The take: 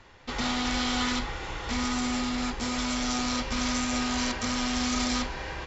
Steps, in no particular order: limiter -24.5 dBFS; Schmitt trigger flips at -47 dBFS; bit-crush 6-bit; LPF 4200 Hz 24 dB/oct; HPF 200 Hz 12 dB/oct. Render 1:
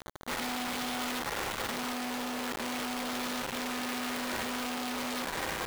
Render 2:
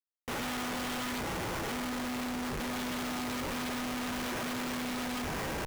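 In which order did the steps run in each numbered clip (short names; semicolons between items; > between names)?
limiter > LPF > Schmitt trigger > HPF > bit-crush; limiter > HPF > bit-crush > LPF > Schmitt trigger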